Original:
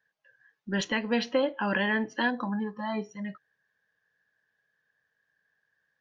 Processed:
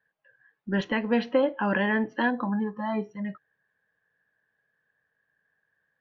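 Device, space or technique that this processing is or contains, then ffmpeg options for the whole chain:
phone in a pocket: -af "lowpass=3.4k,highshelf=f=2.4k:g=-8,volume=3.5dB"

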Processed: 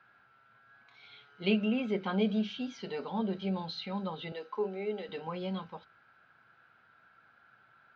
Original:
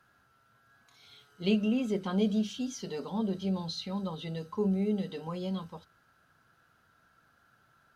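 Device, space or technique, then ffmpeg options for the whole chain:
guitar cabinet: -filter_complex "[0:a]highpass=84,equalizer=f=85:t=q:w=4:g=-8,equalizer=f=160:t=q:w=4:g=-5,equalizer=f=280:t=q:w=4:g=-4,equalizer=f=820:t=q:w=4:g=4,equalizer=f=1.5k:t=q:w=4:g=5,equalizer=f=2.3k:t=q:w=4:g=8,lowpass=f=4.1k:w=0.5412,lowpass=f=4.1k:w=1.3066,asettb=1/sr,asplit=3[a][b][c];[a]atrim=end=4.324[d];[b]atrim=start=4.32:end=5.09,asetpts=PTS-STARTPTS,afade=t=in:d=0.004:c=qsin,afade=t=out:st=0.766:d=0.004:c=qsin,highpass=f=290:w=0.5412,highpass=f=290:w=1.3066[e];[c]atrim=start=5.086[f];[d][e]acrossfade=d=0.004:c1=hsin:c2=qsin[g];[g][f]acrossfade=d=0.004:c1=qsin:c2=hsin"

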